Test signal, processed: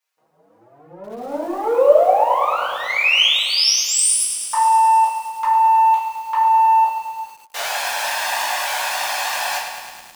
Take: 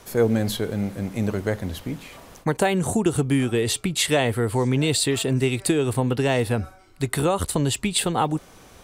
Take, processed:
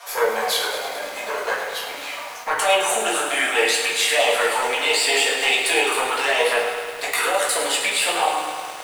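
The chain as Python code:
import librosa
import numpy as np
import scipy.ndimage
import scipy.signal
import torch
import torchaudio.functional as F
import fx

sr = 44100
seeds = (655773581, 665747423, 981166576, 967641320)

p1 = fx.diode_clip(x, sr, knee_db=-18.5)
p2 = scipy.signal.sosfilt(scipy.signal.butter(4, 690.0, 'highpass', fs=sr, output='sos'), p1)
p3 = fx.high_shelf(p2, sr, hz=5600.0, db=-6.0)
p4 = fx.over_compress(p3, sr, threshold_db=-32.0, ratio=-0.5)
p5 = p3 + (p4 * librosa.db_to_amplitude(2.0))
p6 = fx.env_flanger(p5, sr, rest_ms=6.4, full_db=-20.5)
p7 = p6 + fx.echo_single(p6, sr, ms=231, db=-20.5, dry=0)
p8 = fx.room_shoebox(p7, sr, seeds[0], volume_m3=160.0, walls='mixed', distance_m=1.7)
p9 = fx.echo_crushed(p8, sr, ms=105, feedback_pct=80, bits=7, wet_db=-9)
y = p9 * librosa.db_to_amplitude(2.5)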